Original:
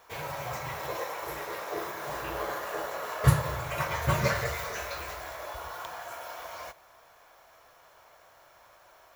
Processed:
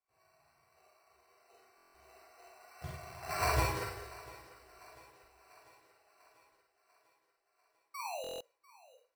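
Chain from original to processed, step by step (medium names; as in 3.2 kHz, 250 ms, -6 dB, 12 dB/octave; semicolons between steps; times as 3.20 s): Doppler pass-by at 3.47 s, 45 m/s, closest 2.7 m; low-pass 1.6 kHz 24 dB/octave; comb 2.8 ms, depth 75%; in parallel at -10.5 dB: bit crusher 7-bit; on the sum: painted sound fall, 7.94–8.26 s, 460–1200 Hz -41 dBFS; sample-and-hold 13×; on a send: thinning echo 694 ms, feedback 59%, high-pass 160 Hz, level -20 dB; on the sum: Schroeder reverb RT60 0.37 s, combs from 33 ms, DRR -0.5 dB; buffer glitch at 1.76/8.22 s, samples 1024, times 7; trim -2.5 dB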